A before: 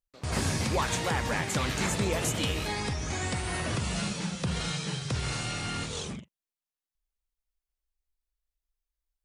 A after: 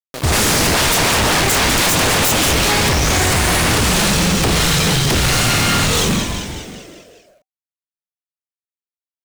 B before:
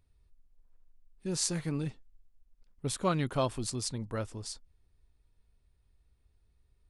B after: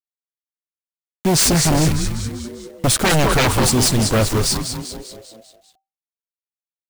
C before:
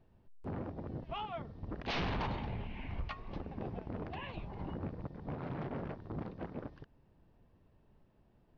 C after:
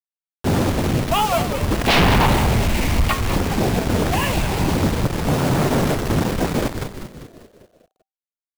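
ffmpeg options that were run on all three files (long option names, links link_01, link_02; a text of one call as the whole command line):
ffmpeg -i in.wav -filter_complex "[0:a]acrusher=bits=7:mix=0:aa=0.000001,asplit=7[link_01][link_02][link_03][link_04][link_05][link_06][link_07];[link_02]adelay=197,afreqshift=-130,volume=-9dB[link_08];[link_03]adelay=394,afreqshift=-260,volume=-14.5dB[link_09];[link_04]adelay=591,afreqshift=-390,volume=-20dB[link_10];[link_05]adelay=788,afreqshift=-520,volume=-25.5dB[link_11];[link_06]adelay=985,afreqshift=-650,volume=-31.1dB[link_12];[link_07]adelay=1182,afreqshift=-780,volume=-36.6dB[link_13];[link_01][link_08][link_09][link_10][link_11][link_12][link_13]amix=inputs=7:normalize=0,aeval=exprs='0.266*sin(PI/2*8.91*val(0)/0.266)':channel_layout=same" out.wav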